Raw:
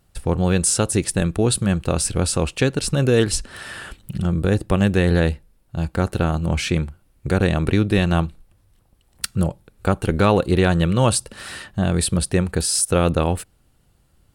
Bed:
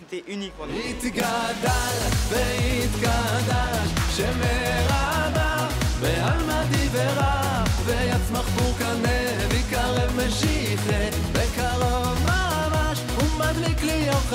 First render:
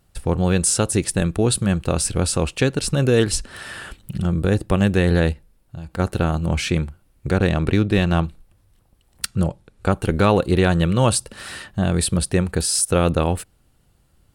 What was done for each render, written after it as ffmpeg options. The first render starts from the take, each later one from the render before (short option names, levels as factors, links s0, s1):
-filter_complex "[0:a]asplit=3[s0][s1][s2];[s0]afade=t=out:st=5.32:d=0.02[s3];[s1]acompressor=threshold=0.0355:ratio=6:attack=3.2:release=140:knee=1:detection=peak,afade=t=in:st=5.32:d=0.02,afade=t=out:st=5.98:d=0.02[s4];[s2]afade=t=in:st=5.98:d=0.02[s5];[s3][s4][s5]amix=inputs=3:normalize=0,asettb=1/sr,asplit=3[s6][s7][s8];[s6]atrim=end=7.304[s9];[s7]atrim=start=7.3:end=8.24,asetpts=PTS-STARTPTS,afade=t=in:d=0.004:c=qsin,afade=t=out:st=0.936:d=0.004:c=qsin,adynamicsmooth=sensitivity=5.5:basefreq=6300[s10];[s8]atrim=start=8.236[s11];[s9][s10]acrossfade=d=0.004:c1=hsin:c2=qsin[s12];[s12][s11]acrossfade=d=0.004:c1=qsin:c2=hsin,asettb=1/sr,asplit=3[s13][s14][s15];[s13]atrim=end=9.264[s16];[s14]atrim=start=9.26:end=9.92,asetpts=PTS-STARTPTS,afade=t=in:d=0.004:c=qsin,afade=t=out:st=0.656:d=0.004:c=qsin,lowpass=9200[s17];[s15]atrim=start=9.916[s18];[s16][s17]acrossfade=d=0.004:c1=hsin:c2=qsin[s19];[s19][s18]acrossfade=d=0.004:c1=qsin:c2=hsin"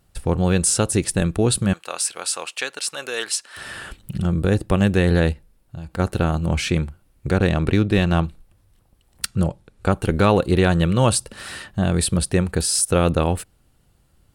-filter_complex "[0:a]asettb=1/sr,asplit=3[s0][s1][s2];[s0]atrim=end=1.734[s3];[s1]atrim=start=1.73:end=3.57,asetpts=PTS-STARTPTS,afade=t=in:d=0.004:c=qsin,afade=t=out:st=1.836:d=0.004:c=qsin,highpass=930[s4];[s2]atrim=start=3.566[s5];[s3][s4]acrossfade=d=0.004:c1=hsin:c2=qsin[s6];[s6][s5]acrossfade=d=0.004:c1=qsin:c2=hsin"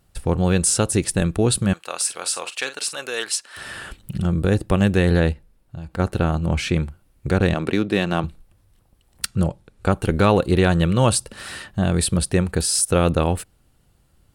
-filter_complex "[0:a]asettb=1/sr,asplit=3[s0][s1][s2];[s0]atrim=end=1.964[s3];[s1]atrim=start=1.96:end=3.01,asetpts=PTS-STARTPTS,afade=t=in:d=0.004:c=qsin,afade=t=out:st=1.046:d=0.004:c=qsin,asplit=2[s4][s5];[s5]adelay=45,volume=0.282[s6];[s4][s6]amix=inputs=2:normalize=0,atrim=end_sample=46305[s7];[s2]atrim=start=3.006[s8];[s3][s7]acrossfade=d=0.004:c1=hsin:c2=qsin[s9];[s9][s8]acrossfade=d=0.004:c1=qsin:c2=hsin,asettb=1/sr,asplit=3[s10][s11][s12];[s10]atrim=end=5.174[s13];[s11]atrim=start=5.17:end=6.8,asetpts=PTS-STARTPTS,afade=t=in:d=0.004:c=qsin,afade=t=out:st=1.626:d=0.004:c=qsin,highshelf=f=4500:g=-4.5[s14];[s12]atrim=start=6.796[s15];[s13][s14]acrossfade=d=0.004:c1=hsin:c2=qsin[s16];[s16][s15]acrossfade=d=0.004:c1=qsin:c2=hsin,asettb=1/sr,asplit=3[s17][s18][s19];[s17]atrim=end=7.544[s20];[s18]atrim=start=7.54:end=8.24,asetpts=PTS-STARTPTS,afade=t=in:d=0.004:c=qsin,afade=t=out:st=0.696:d=0.004:c=qsin,highpass=200[s21];[s19]atrim=start=8.236[s22];[s20][s21]acrossfade=d=0.004:c1=hsin:c2=qsin[s23];[s23][s22]acrossfade=d=0.004:c1=qsin:c2=hsin"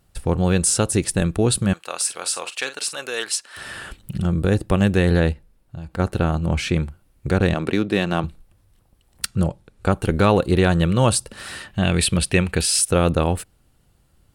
-filter_complex "[0:a]asettb=1/sr,asplit=3[s0][s1][s2];[s0]atrim=end=11.704[s3];[s1]atrim=start=11.7:end=12.89,asetpts=PTS-STARTPTS,afade=t=in:d=0.004:c=qsin,afade=t=out:st=1.186:d=0.004:c=qsin,equalizer=f=2600:t=o:w=0.97:g=11.5[s4];[s2]atrim=start=12.886[s5];[s3][s4]acrossfade=d=0.004:c1=hsin:c2=qsin[s6];[s6][s5]acrossfade=d=0.004:c1=qsin:c2=hsin"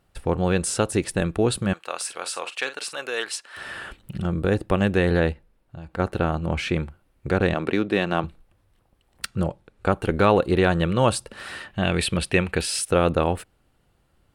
-af "bass=f=250:g=-6,treble=f=4000:g=-9"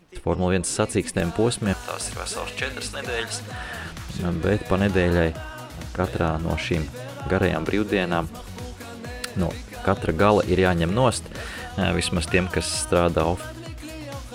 -filter_complex "[1:a]volume=0.224[s0];[0:a][s0]amix=inputs=2:normalize=0"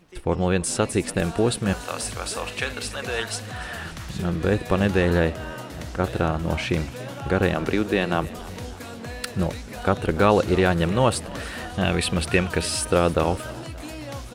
-filter_complex "[0:a]asplit=6[s0][s1][s2][s3][s4][s5];[s1]adelay=290,afreqshift=55,volume=0.106[s6];[s2]adelay=580,afreqshift=110,volume=0.0603[s7];[s3]adelay=870,afreqshift=165,volume=0.0343[s8];[s4]adelay=1160,afreqshift=220,volume=0.0197[s9];[s5]adelay=1450,afreqshift=275,volume=0.0112[s10];[s0][s6][s7][s8][s9][s10]amix=inputs=6:normalize=0"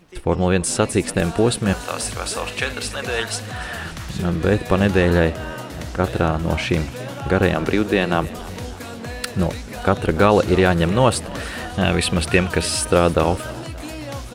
-af "volume=1.58,alimiter=limit=0.794:level=0:latency=1"